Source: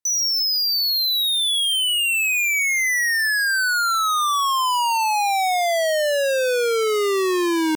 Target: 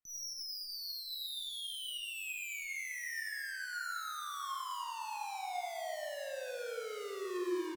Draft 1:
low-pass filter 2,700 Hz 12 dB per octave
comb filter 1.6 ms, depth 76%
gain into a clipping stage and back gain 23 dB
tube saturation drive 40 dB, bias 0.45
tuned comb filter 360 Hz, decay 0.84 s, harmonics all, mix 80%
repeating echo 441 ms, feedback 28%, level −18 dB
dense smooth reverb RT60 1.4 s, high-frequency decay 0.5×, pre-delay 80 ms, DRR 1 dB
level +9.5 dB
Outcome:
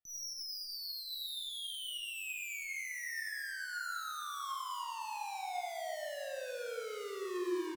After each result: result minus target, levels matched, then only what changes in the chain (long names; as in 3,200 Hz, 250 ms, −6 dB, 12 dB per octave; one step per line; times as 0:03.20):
gain into a clipping stage and back: distortion +11 dB; echo 195 ms early
change: gain into a clipping stage and back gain 16.5 dB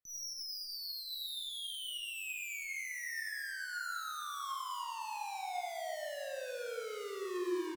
echo 195 ms early
change: repeating echo 636 ms, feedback 28%, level −18 dB